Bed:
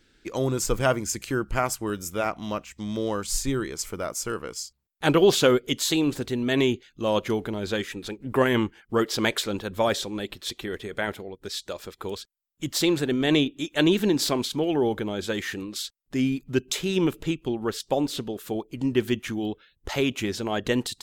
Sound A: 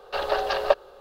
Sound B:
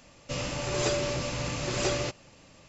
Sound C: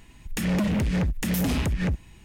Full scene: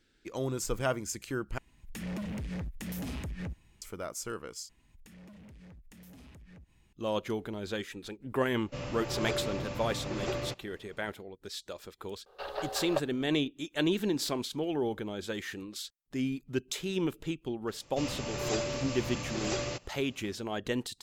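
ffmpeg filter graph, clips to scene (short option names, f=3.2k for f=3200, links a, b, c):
-filter_complex "[3:a]asplit=2[a][b];[2:a]asplit=2[c][d];[0:a]volume=-8dB[e];[b]acompressor=threshold=-37dB:ratio=6:attack=3.2:release=140:knee=1:detection=peak[f];[c]lowpass=f=1.9k:p=1[g];[e]asplit=3[h][i][j];[h]atrim=end=1.584[k];[a]atrim=end=2.24,asetpts=PTS-STARTPTS,volume=-13dB[l];[i]atrim=start=3.816:end=4.694[m];[f]atrim=end=2.24,asetpts=PTS-STARTPTS,volume=-15.5dB[n];[j]atrim=start=6.926[o];[g]atrim=end=2.68,asetpts=PTS-STARTPTS,volume=-4.5dB,afade=t=in:d=0.004:c=hsin,afade=t=out:st=2.676:d=0.004:c=hsin,adelay=8430[p];[1:a]atrim=end=1,asetpts=PTS-STARTPTS,volume=-12dB,afade=t=in:d=0.004:c=hsin,afade=t=out:st=0.996:d=0.004:c=hsin,adelay=12260[q];[d]atrim=end=2.68,asetpts=PTS-STARTPTS,volume=-5dB,afade=t=in:d=0.004:c=hsin,afade=t=out:st=2.676:d=0.004:c=hsin,adelay=17670[r];[k][l]acrossfade=d=0.004:c1=hsin:c2=hsin[s];[s][m]acrossfade=d=0.004:c1=hsin:c2=hsin[t];[t][n]acrossfade=d=0.004:c1=hsin:c2=hsin[u];[u][o]acrossfade=d=0.004:c1=hsin:c2=hsin[v];[v][p][q][r]amix=inputs=4:normalize=0"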